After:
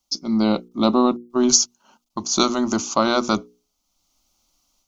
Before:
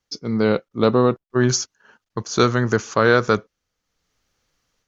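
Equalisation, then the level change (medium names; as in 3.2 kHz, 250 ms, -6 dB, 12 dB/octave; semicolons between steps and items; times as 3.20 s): treble shelf 5.7 kHz +8 dB; hum notches 60/120/180/240/300/360/420/480 Hz; static phaser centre 460 Hz, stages 6; +4.0 dB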